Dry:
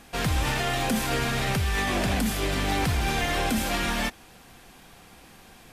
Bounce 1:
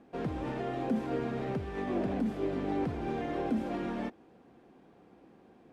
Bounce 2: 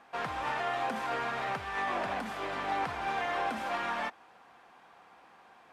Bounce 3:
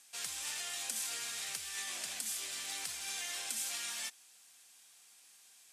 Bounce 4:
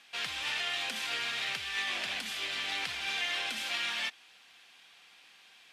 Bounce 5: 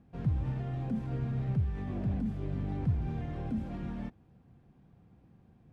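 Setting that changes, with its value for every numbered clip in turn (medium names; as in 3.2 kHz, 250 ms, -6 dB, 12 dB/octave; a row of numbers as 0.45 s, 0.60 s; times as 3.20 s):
band-pass filter, frequency: 340 Hz, 990 Hz, 8 kHz, 3.1 kHz, 120 Hz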